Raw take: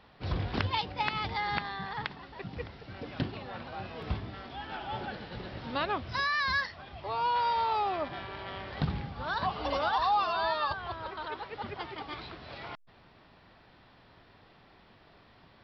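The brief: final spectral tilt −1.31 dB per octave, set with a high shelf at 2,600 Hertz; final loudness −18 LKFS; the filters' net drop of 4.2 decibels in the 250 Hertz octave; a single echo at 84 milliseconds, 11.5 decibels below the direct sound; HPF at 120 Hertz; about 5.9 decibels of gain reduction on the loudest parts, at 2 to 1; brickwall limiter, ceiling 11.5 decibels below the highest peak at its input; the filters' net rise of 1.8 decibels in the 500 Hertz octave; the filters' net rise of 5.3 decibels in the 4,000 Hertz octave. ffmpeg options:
ffmpeg -i in.wav -af "highpass=120,equalizer=frequency=250:width_type=o:gain=-6.5,equalizer=frequency=500:width_type=o:gain=3.5,highshelf=frequency=2600:gain=3.5,equalizer=frequency=4000:width_type=o:gain=3.5,acompressor=threshold=-33dB:ratio=2,alimiter=level_in=1.5dB:limit=-24dB:level=0:latency=1,volume=-1.5dB,aecho=1:1:84:0.266,volume=18.5dB" out.wav

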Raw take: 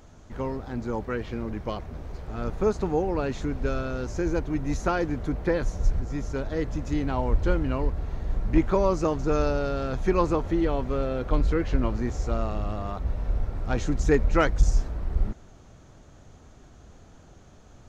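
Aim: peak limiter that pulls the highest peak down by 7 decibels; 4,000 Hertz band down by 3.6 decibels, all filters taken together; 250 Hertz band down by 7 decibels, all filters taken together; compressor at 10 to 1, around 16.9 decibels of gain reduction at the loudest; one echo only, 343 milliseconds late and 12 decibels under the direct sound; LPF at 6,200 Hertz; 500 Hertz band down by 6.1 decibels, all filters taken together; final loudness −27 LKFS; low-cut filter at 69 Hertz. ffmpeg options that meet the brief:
ffmpeg -i in.wav -af "highpass=69,lowpass=6200,equalizer=frequency=250:width_type=o:gain=-8,equalizer=frequency=500:width_type=o:gain=-5,equalizer=frequency=4000:width_type=o:gain=-4,acompressor=threshold=-39dB:ratio=10,alimiter=level_in=11dB:limit=-24dB:level=0:latency=1,volume=-11dB,aecho=1:1:343:0.251,volume=18.5dB" out.wav

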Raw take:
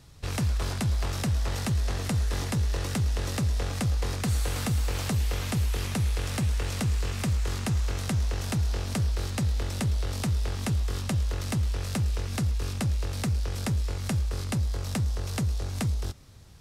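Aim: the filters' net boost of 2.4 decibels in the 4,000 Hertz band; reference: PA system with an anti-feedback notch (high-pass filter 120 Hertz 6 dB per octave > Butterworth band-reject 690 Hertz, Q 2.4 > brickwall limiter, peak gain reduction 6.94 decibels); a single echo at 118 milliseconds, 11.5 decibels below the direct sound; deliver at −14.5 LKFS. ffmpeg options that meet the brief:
ffmpeg -i in.wav -af "highpass=frequency=120:poles=1,asuperstop=centerf=690:order=8:qfactor=2.4,equalizer=frequency=4000:width_type=o:gain=3,aecho=1:1:118:0.266,volume=19dB,alimiter=limit=-5dB:level=0:latency=1" out.wav

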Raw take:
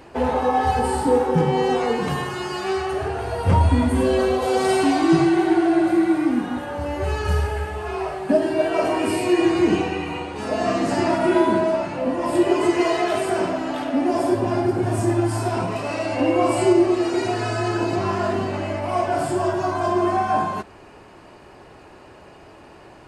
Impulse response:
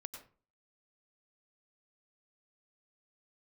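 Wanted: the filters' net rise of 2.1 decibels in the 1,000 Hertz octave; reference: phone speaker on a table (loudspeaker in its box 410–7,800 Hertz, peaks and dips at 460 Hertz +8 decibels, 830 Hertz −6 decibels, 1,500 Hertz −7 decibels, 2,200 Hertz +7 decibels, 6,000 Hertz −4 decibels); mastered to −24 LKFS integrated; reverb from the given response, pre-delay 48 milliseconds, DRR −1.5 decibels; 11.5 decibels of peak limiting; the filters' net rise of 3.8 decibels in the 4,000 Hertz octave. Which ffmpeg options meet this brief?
-filter_complex "[0:a]equalizer=frequency=1000:width_type=o:gain=6.5,equalizer=frequency=4000:width_type=o:gain=4.5,alimiter=limit=-14.5dB:level=0:latency=1,asplit=2[link_01][link_02];[1:a]atrim=start_sample=2205,adelay=48[link_03];[link_02][link_03]afir=irnorm=-1:irlink=0,volume=5.5dB[link_04];[link_01][link_04]amix=inputs=2:normalize=0,highpass=frequency=410:width=0.5412,highpass=frequency=410:width=1.3066,equalizer=frequency=460:width_type=q:width=4:gain=8,equalizer=frequency=830:width_type=q:width=4:gain=-6,equalizer=frequency=1500:width_type=q:width=4:gain=-7,equalizer=frequency=2200:width_type=q:width=4:gain=7,equalizer=frequency=6000:width_type=q:width=4:gain=-4,lowpass=frequency=7800:width=0.5412,lowpass=frequency=7800:width=1.3066,volume=-3dB"

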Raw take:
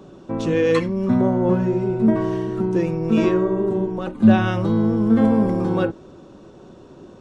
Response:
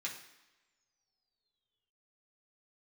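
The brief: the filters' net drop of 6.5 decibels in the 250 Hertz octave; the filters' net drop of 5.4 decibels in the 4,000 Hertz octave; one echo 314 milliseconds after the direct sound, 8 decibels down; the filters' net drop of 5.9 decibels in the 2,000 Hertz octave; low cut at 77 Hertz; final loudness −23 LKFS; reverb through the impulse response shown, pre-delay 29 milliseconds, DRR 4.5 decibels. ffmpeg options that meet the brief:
-filter_complex "[0:a]highpass=77,equalizer=frequency=250:width_type=o:gain=-8.5,equalizer=frequency=2000:width_type=o:gain=-7.5,equalizer=frequency=4000:width_type=o:gain=-4,aecho=1:1:314:0.398,asplit=2[link_01][link_02];[1:a]atrim=start_sample=2205,adelay=29[link_03];[link_02][link_03]afir=irnorm=-1:irlink=0,volume=-5.5dB[link_04];[link_01][link_04]amix=inputs=2:normalize=0,volume=-0.5dB"

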